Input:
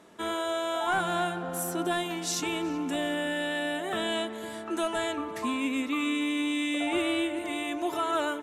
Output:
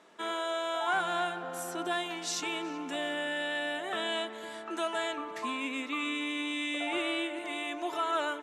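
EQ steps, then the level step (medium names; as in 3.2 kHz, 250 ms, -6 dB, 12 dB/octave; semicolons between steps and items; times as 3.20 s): high-pass 650 Hz 6 dB/octave; distance through air 52 m; 0.0 dB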